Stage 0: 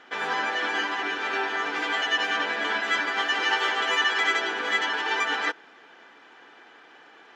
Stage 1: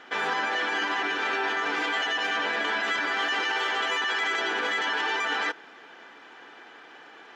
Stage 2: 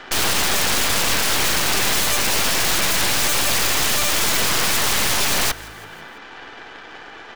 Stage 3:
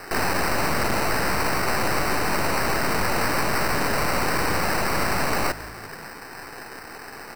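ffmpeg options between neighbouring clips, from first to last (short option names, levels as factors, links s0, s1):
-af "alimiter=limit=0.0794:level=0:latency=1:release=24,volume=1.41"
-filter_complex "[0:a]aeval=exprs='(mod(17.8*val(0)+1,2)-1)/17.8':c=same,aeval=exprs='0.0562*(cos(1*acos(clip(val(0)/0.0562,-1,1)))-cos(1*PI/2))+0.0251*(cos(4*acos(clip(val(0)/0.0562,-1,1)))-cos(4*PI/2))':c=same,asplit=5[s0][s1][s2][s3][s4];[s1]adelay=167,afreqshift=-53,volume=0.0794[s5];[s2]adelay=334,afreqshift=-106,volume=0.0447[s6];[s3]adelay=501,afreqshift=-159,volume=0.0248[s7];[s4]adelay=668,afreqshift=-212,volume=0.014[s8];[s0][s5][s6][s7][s8]amix=inputs=5:normalize=0,volume=2.82"
-af "acrusher=samples=13:mix=1:aa=0.000001,asoftclip=type=tanh:threshold=0.15"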